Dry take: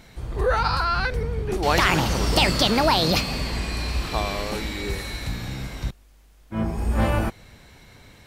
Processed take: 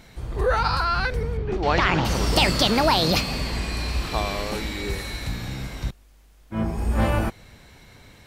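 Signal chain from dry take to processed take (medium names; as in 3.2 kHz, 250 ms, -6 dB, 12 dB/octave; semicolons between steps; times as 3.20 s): 1.37–2.05 s: distance through air 160 m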